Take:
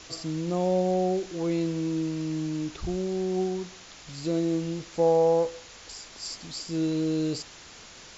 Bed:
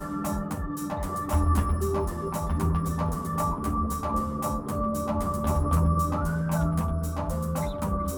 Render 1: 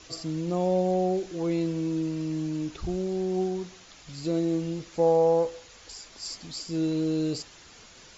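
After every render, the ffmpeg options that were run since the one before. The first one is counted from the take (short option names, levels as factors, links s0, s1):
-af "afftdn=nr=6:nf=-48"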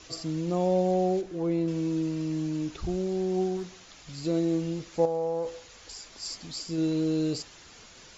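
-filter_complex "[0:a]asettb=1/sr,asplit=3[s0][s1][s2];[s0]atrim=end=1.214[s3];[s1]atrim=start=1.21:end=1.68,asetpts=PTS-STARTPTS,afade=t=in:d=0.004:c=qsin,afade=t=out:st=0.466:d=0.004:c=qsin,highshelf=f=2300:g=-10.5[s4];[s2]atrim=start=1.676[s5];[s3][s4]acrossfade=d=0.004:c1=hsin:c2=qsin[s6];[s6][s5]acrossfade=d=0.004:c1=qsin:c2=hsin,asettb=1/sr,asplit=3[s7][s8][s9];[s7]atrim=end=3.574[s10];[s8]atrim=start=3.57:end=4.19,asetpts=PTS-STARTPTS,afade=t=in:d=0.004:c=qsin,afade=t=out:st=0.616:d=0.004:c=qsin,asoftclip=type=hard:threshold=0.0376[s11];[s9]atrim=start=4.186[s12];[s10][s11]acrossfade=d=0.004:c1=hsin:c2=qsin[s13];[s13][s12]acrossfade=d=0.004:c1=qsin:c2=hsin,asettb=1/sr,asplit=3[s14][s15][s16];[s14]atrim=end=5.054[s17];[s15]atrim=start=5.05:end=6.78,asetpts=PTS-STARTPTS,afade=t=in:d=0.004:c=qsin,afade=t=out:st=1.726:d=0.004:c=qsin,acompressor=threshold=0.0501:ratio=6:attack=3.2:release=140:knee=1:detection=peak[s18];[s16]atrim=start=6.776[s19];[s17][s18]acrossfade=d=0.004:c1=hsin:c2=qsin[s20];[s20][s19]acrossfade=d=0.004:c1=qsin:c2=hsin"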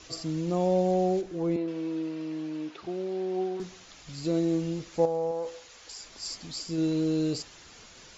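-filter_complex "[0:a]asettb=1/sr,asplit=3[s0][s1][s2];[s0]atrim=end=1.564[s3];[s1]atrim=start=1.56:end=3.6,asetpts=PTS-STARTPTS,afade=t=in:d=0.004:c=qsin,afade=t=out:st=2.036:d=0.004:c=qsin,highpass=320,lowpass=3700[s4];[s2]atrim=start=3.596[s5];[s3][s4]acrossfade=d=0.004:c1=hsin:c2=qsin[s6];[s6][s5]acrossfade=d=0.004:c1=qsin:c2=hsin,asettb=1/sr,asplit=3[s7][s8][s9];[s7]atrim=end=5.314[s10];[s8]atrim=start=5.31:end=6,asetpts=PTS-STARTPTS,afade=t=in:d=0.004:c=qsin,afade=t=out:st=0.686:d=0.004:c=qsin,lowshelf=f=260:g=-9[s11];[s9]atrim=start=5.996[s12];[s10][s11]acrossfade=d=0.004:c1=hsin:c2=qsin[s13];[s13][s12]acrossfade=d=0.004:c1=qsin:c2=hsin"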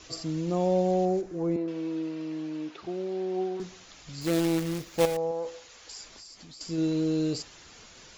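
-filter_complex "[0:a]asettb=1/sr,asplit=3[s0][s1][s2];[s0]atrim=end=1.054[s3];[s1]atrim=start=1.05:end=1.68,asetpts=PTS-STARTPTS,afade=t=in:d=0.004:c=qsin,afade=t=out:st=0.626:d=0.004:c=qsin,equalizer=f=3300:t=o:w=1.1:g=-8[s4];[s2]atrim=start=1.676[s5];[s3][s4]acrossfade=d=0.004:c1=hsin:c2=qsin[s6];[s6][s5]acrossfade=d=0.004:c1=qsin:c2=hsin,asettb=1/sr,asplit=3[s7][s8][s9];[s7]atrim=end=4.214[s10];[s8]atrim=start=4.21:end=5.17,asetpts=PTS-STARTPTS,afade=t=in:d=0.004:c=qsin,afade=t=out:st=0.956:d=0.004:c=qsin,acrusher=bits=2:mode=log:mix=0:aa=0.000001[s11];[s9]atrim=start=5.166[s12];[s10][s11]acrossfade=d=0.004:c1=hsin:c2=qsin[s13];[s13][s12]acrossfade=d=0.004:c1=qsin:c2=hsin,asettb=1/sr,asplit=3[s14][s15][s16];[s14]atrim=end=6.084[s17];[s15]atrim=start=6.08:end=6.61,asetpts=PTS-STARTPTS,afade=t=in:d=0.004:c=qsin,afade=t=out:st=0.526:d=0.004:c=qsin,acompressor=threshold=0.00631:ratio=16:attack=3.2:release=140:knee=1:detection=peak[s18];[s16]atrim=start=6.606[s19];[s17][s18]acrossfade=d=0.004:c1=hsin:c2=qsin[s20];[s20][s19]acrossfade=d=0.004:c1=qsin:c2=hsin"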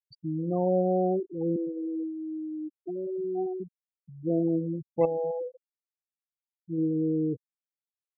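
-af "lowpass=4800,afftfilt=real='re*gte(hypot(re,im),0.0794)':imag='im*gte(hypot(re,im),0.0794)':win_size=1024:overlap=0.75"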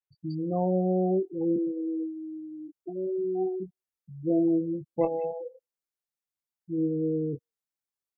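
-filter_complex "[0:a]asplit=2[s0][s1];[s1]adelay=21,volume=0.473[s2];[s0][s2]amix=inputs=2:normalize=0,acrossover=split=2900[s3][s4];[s4]adelay=180[s5];[s3][s5]amix=inputs=2:normalize=0"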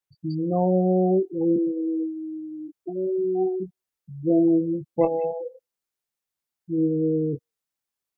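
-af "volume=1.78"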